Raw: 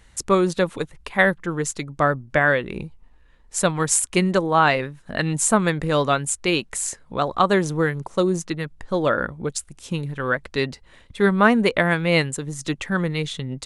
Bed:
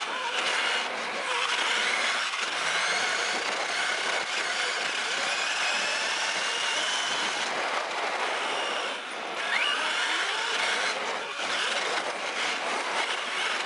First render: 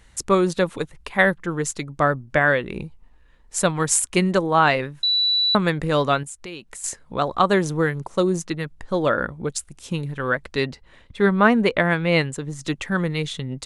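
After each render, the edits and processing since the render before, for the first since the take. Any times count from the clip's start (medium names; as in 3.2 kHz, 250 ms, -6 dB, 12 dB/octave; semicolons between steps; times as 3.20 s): 5.03–5.55 s: bleep 3.95 kHz -16.5 dBFS; 6.23–6.84 s: compression 2.5:1, threshold -39 dBFS; 10.65–12.64 s: treble shelf 7.7 kHz -11.5 dB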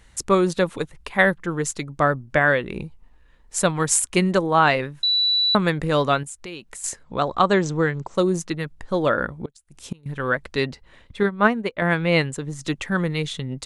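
7.03–8.15 s: brick-wall FIR low-pass 8.2 kHz; 9.30–10.06 s: inverted gate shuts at -17 dBFS, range -26 dB; 11.23–11.82 s: upward expansion 2.5:1, over -26 dBFS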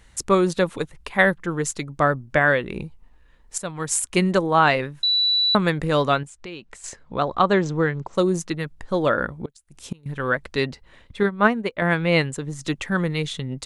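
3.58–4.22 s: fade in, from -15 dB; 6.18–8.13 s: distance through air 83 m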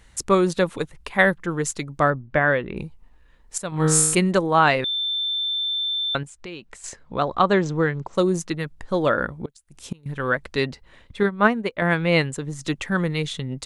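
2.10–2.77 s: distance through air 250 m; 3.70–4.15 s: flutter echo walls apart 3.3 m, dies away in 0.99 s; 4.84–6.15 s: bleep 3.55 kHz -22 dBFS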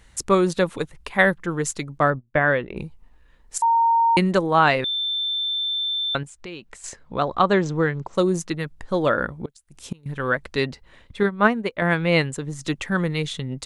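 1.98–2.82 s: gate -33 dBFS, range -21 dB; 3.62–4.17 s: bleep 922 Hz -14.5 dBFS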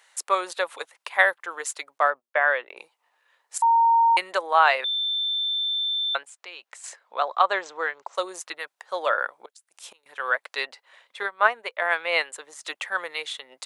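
high-pass 620 Hz 24 dB/octave; dynamic bell 6.1 kHz, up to -5 dB, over -45 dBFS, Q 1.6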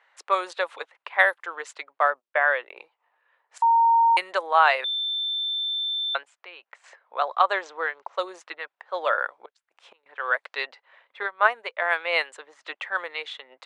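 level-controlled noise filter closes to 2.1 kHz, open at -18 dBFS; tone controls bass -9 dB, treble -3 dB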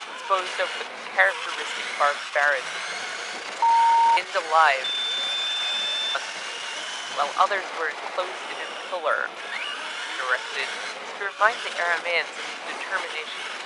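add bed -4.5 dB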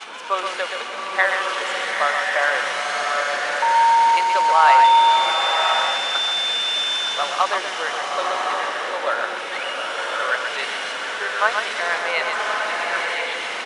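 on a send: delay 127 ms -6 dB; on the sum: swelling reverb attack 1100 ms, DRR 0.5 dB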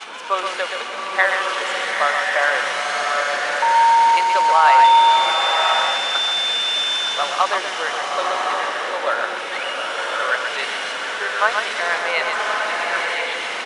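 trim +1.5 dB; peak limiter -3 dBFS, peak gain reduction 2 dB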